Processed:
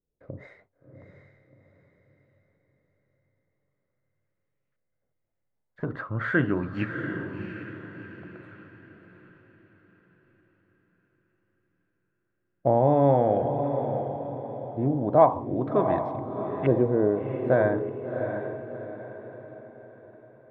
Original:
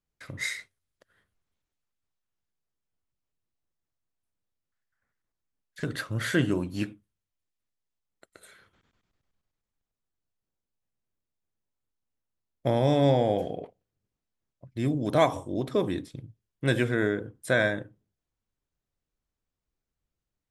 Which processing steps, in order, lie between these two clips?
LFO low-pass saw up 0.42 Hz 450–2500 Hz; on a send: diffused feedback echo 0.707 s, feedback 43%, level -7 dB

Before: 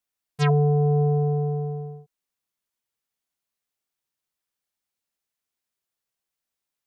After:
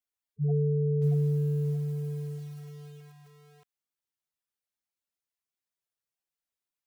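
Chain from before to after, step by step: spectral gate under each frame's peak -10 dB strong; lo-fi delay 0.628 s, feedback 35%, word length 8-bit, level -3 dB; gain -6.5 dB

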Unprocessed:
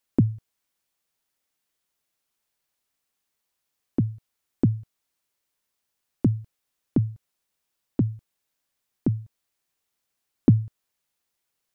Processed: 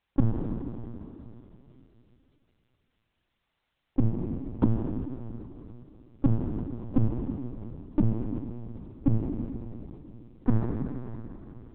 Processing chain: compressor 12:1, threshold -24 dBFS, peak gain reduction 13 dB; plate-style reverb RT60 3.2 s, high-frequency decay 1×, DRR 1 dB; LPC vocoder at 8 kHz pitch kept; gain +5 dB

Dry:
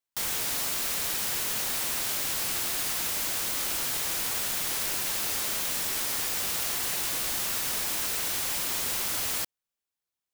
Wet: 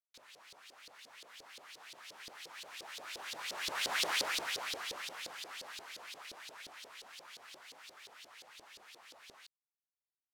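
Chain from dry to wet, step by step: Doppler pass-by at 4.04, 48 m/s, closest 13 m; LFO band-pass saw up 5.7 Hz 420–4600 Hz; gain +9.5 dB

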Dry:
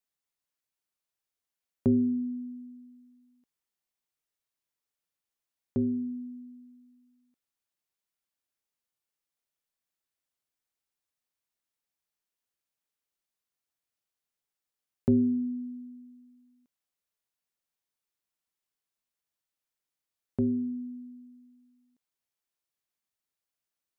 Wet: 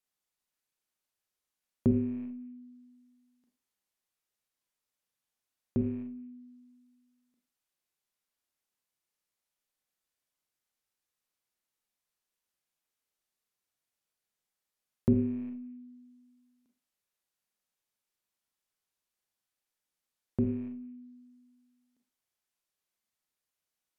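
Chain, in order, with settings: rattling part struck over -35 dBFS, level -25 dBFS; Schroeder reverb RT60 0.32 s, combs from 30 ms, DRR 3 dB; treble ducked by the level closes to 420 Hz, closed at -34 dBFS

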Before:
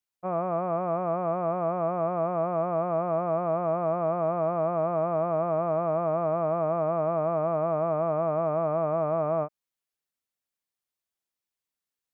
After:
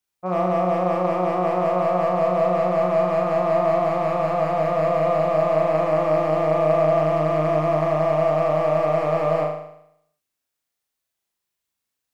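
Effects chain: hard clip -21 dBFS, distortion -17 dB; flutter echo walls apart 6.6 m, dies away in 0.75 s; gain +4.5 dB

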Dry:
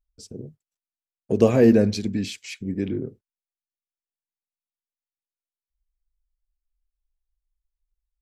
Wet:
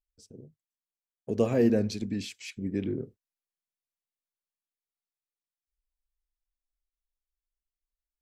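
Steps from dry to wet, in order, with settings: Doppler pass-by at 3.55, 6 m/s, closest 8 m; gain -3 dB

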